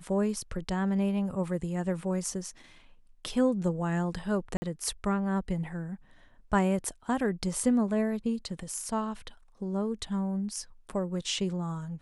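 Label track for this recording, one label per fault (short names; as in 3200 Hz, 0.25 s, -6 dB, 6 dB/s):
4.570000	4.620000	gap 50 ms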